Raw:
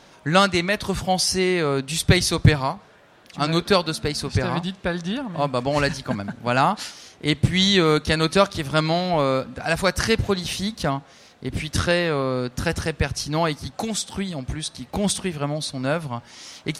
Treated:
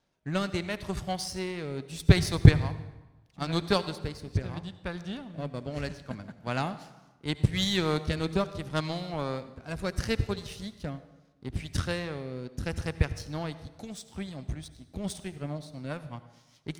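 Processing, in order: low shelf 160 Hz +9.5 dB; rotary speaker horn 0.75 Hz, later 5 Hz, at 14.81; power-law curve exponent 1.4; reverb RT60 1.1 s, pre-delay 63 ms, DRR 13.5 dB; gain -4 dB

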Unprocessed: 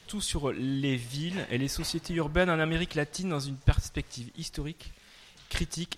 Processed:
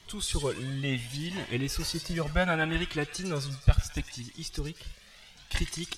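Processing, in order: thin delay 0.106 s, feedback 55%, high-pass 1600 Hz, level -8 dB; cascading flanger rising 0.7 Hz; gain +4 dB

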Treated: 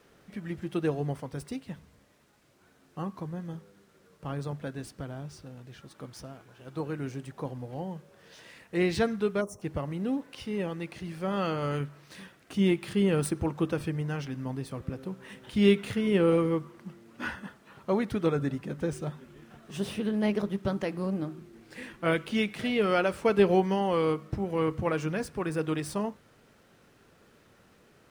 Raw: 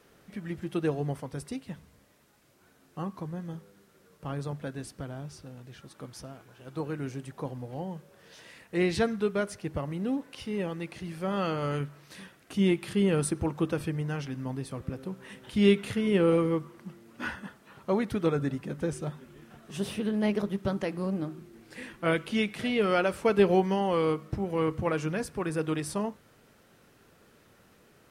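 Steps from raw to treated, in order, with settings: median filter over 3 samples; spectral gain 9.41–9.62, 1300–5400 Hz -22 dB

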